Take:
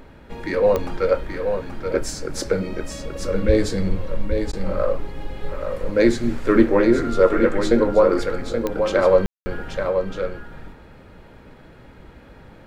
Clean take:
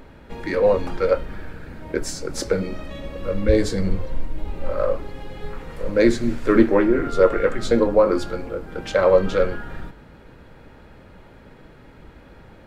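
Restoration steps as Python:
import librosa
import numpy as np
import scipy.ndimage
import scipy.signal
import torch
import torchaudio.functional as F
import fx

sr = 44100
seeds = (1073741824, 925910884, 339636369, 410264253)

y = fx.fix_declick_ar(x, sr, threshold=10.0)
y = fx.fix_ambience(y, sr, seeds[0], print_start_s=11.28, print_end_s=11.78, start_s=9.26, end_s=9.46)
y = fx.fix_interpolate(y, sr, at_s=(4.52,), length_ms=10.0)
y = fx.fix_echo_inverse(y, sr, delay_ms=829, level_db=-6.5)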